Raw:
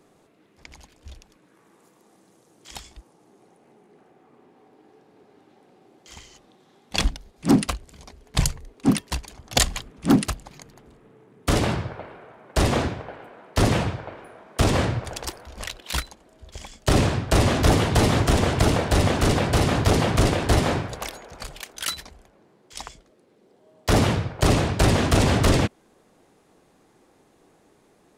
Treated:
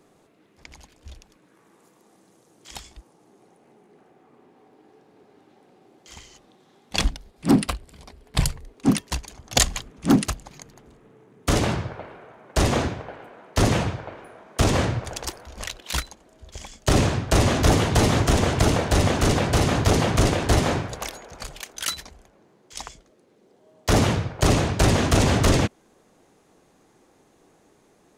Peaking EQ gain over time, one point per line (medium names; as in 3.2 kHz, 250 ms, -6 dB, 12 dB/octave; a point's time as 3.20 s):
peaking EQ 6.4 kHz 0.29 oct
7.06 s +1 dB
7.56 s -7 dB
8.42 s -7 dB
8.90 s +4.5 dB